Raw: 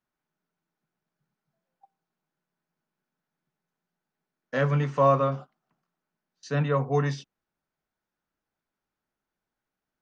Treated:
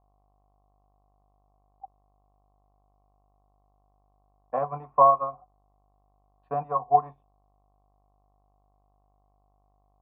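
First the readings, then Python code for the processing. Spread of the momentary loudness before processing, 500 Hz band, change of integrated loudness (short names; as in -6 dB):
11 LU, -2.0 dB, +1.0 dB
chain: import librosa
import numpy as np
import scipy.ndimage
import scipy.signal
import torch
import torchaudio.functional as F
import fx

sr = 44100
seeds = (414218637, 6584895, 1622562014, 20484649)

y = fx.transient(x, sr, attack_db=11, sustain_db=-9)
y = fx.dmg_buzz(y, sr, base_hz=50.0, harmonics=31, level_db=-49.0, tilt_db=-9, odd_only=False)
y = fx.formant_cascade(y, sr, vowel='a')
y = y * 10.0 ** (8.5 / 20.0)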